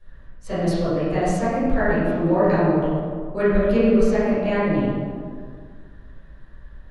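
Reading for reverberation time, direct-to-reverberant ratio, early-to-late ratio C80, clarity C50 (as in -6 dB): 2.0 s, -13.0 dB, -1.0 dB, -3.5 dB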